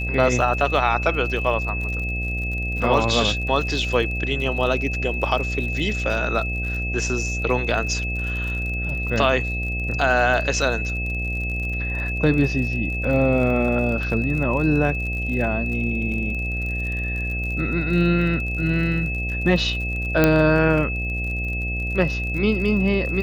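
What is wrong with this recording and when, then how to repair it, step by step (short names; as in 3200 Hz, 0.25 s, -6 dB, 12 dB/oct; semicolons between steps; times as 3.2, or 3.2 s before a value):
buzz 60 Hz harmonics 13 -27 dBFS
crackle 48/s -30 dBFS
tone 2600 Hz -27 dBFS
20.24 pop -3 dBFS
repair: de-click; notch 2600 Hz, Q 30; de-hum 60 Hz, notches 13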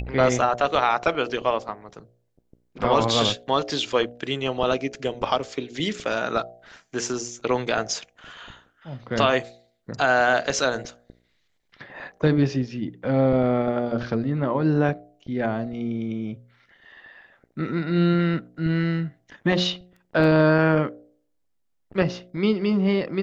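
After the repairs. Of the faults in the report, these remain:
20.24 pop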